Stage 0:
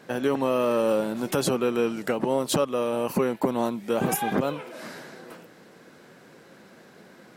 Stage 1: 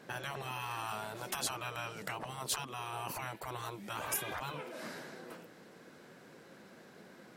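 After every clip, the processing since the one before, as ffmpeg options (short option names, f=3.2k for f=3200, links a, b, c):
-af "afftfilt=real='re*lt(hypot(re,im),0.126)':imag='im*lt(hypot(re,im),0.126)':win_size=1024:overlap=0.75,volume=-5dB"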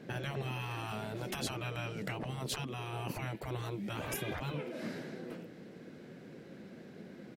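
-af "firequalizer=gain_entry='entry(220,0);entry(1000,-15);entry(2100,-8);entry(8100,-16)':delay=0.05:min_phase=1,volume=9dB"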